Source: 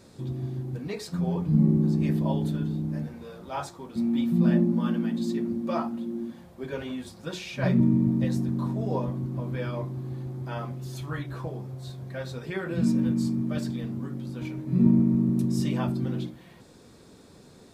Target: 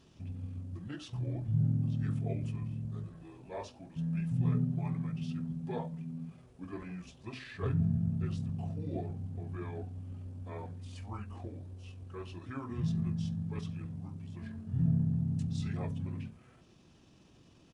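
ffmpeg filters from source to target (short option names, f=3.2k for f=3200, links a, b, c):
-af "asetrate=31183,aresample=44100,atempo=1.41421,volume=-8.5dB"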